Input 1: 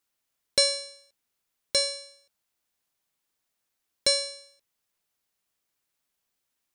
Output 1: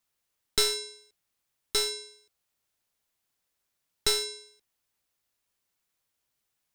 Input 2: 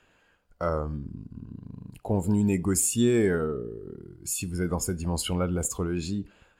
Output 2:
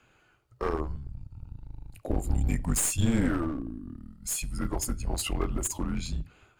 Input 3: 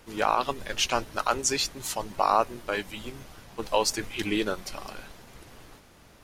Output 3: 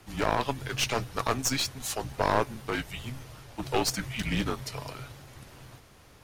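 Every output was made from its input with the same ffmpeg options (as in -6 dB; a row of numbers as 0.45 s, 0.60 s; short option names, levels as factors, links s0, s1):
-af "afreqshift=-140,aeval=exprs='clip(val(0),-1,0.0376)':c=same"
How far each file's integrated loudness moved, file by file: -3.0 LU, -3.0 LU, -2.5 LU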